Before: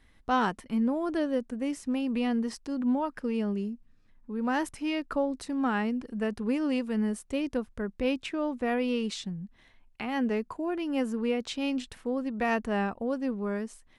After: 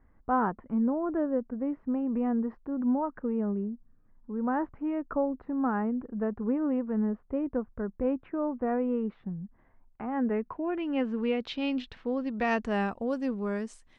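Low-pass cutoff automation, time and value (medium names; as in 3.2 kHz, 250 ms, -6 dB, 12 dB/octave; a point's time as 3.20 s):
low-pass 24 dB/octave
10.10 s 1.4 kHz
10.60 s 2.6 kHz
11.51 s 4.2 kHz
12.04 s 4.2 kHz
12.88 s 8.7 kHz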